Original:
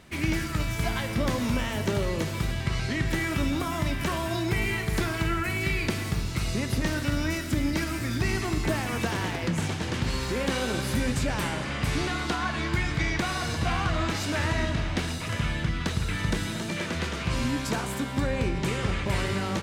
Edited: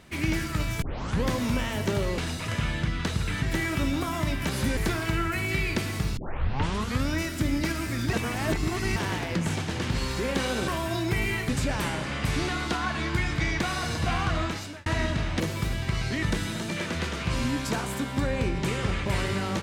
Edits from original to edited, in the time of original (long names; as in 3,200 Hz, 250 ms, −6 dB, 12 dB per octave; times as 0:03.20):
0:00.82: tape start 0.47 s
0:02.18–0:03.01: swap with 0:14.99–0:16.23
0:04.08–0:04.89: swap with 0:10.80–0:11.08
0:06.29: tape start 0.91 s
0:08.25–0:09.08: reverse
0:13.96–0:14.45: fade out